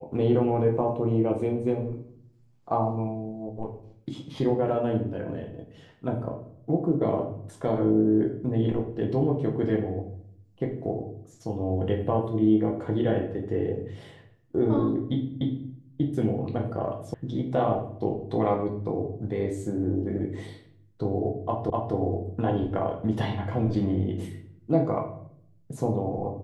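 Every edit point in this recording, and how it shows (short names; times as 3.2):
15.41 repeat of the last 0.29 s
17.14 sound cut off
21.7 repeat of the last 0.25 s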